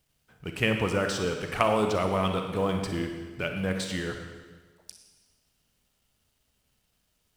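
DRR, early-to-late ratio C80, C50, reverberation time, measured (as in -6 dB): 4.0 dB, 6.5 dB, 5.0 dB, 1.4 s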